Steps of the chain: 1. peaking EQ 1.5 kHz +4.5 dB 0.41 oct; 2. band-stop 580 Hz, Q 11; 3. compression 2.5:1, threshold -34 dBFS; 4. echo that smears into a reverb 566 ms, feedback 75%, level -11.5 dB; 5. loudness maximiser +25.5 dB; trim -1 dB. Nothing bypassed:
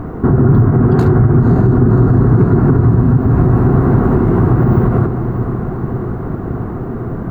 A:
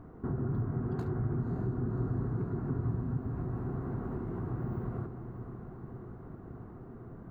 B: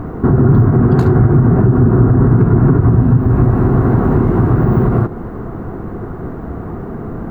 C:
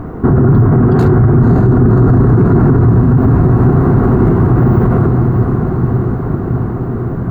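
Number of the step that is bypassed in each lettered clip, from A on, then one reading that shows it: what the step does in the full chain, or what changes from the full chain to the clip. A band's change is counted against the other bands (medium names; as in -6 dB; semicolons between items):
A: 5, crest factor change +5.0 dB; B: 4, momentary loudness spread change +4 LU; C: 3, mean gain reduction 5.0 dB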